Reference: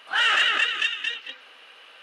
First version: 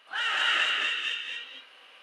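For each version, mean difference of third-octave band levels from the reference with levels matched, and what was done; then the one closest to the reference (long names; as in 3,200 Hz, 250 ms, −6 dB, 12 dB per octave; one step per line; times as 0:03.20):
3.5 dB: reverb whose tail is shaped and stops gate 310 ms rising, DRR −3 dB
level −9 dB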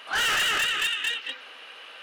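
7.0 dB: soft clipping −26.5 dBFS, distortion −7 dB
level +4.5 dB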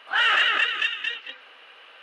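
2.0 dB: bass and treble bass −6 dB, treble −10 dB
level +1.5 dB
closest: third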